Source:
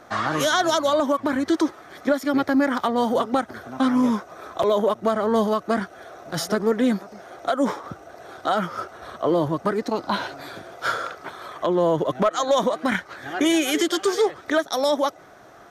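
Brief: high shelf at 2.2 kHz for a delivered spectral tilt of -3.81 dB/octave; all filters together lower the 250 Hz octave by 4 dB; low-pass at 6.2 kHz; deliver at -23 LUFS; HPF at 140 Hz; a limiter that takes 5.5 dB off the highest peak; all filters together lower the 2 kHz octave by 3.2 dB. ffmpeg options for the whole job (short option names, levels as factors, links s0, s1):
-af "highpass=140,lowpass=6200,equalizer=f=250:t=o:g=-4.5,equalizer=f=2000:t=o:g=-7,highshelf=f=2200:g=5,volume=1.5,alimiter=limit=0.251:level=0:latency=1"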